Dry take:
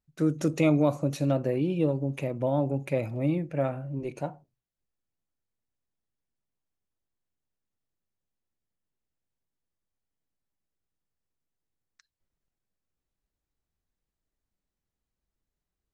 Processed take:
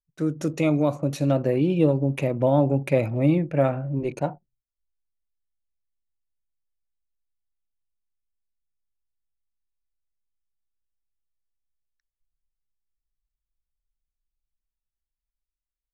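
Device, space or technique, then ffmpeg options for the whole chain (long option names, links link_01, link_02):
voice memo with heavy noise removal: -af "anlmdn=0.0158,dynaudnorm=framelen=150:gausssize=17:maxgain=7dB"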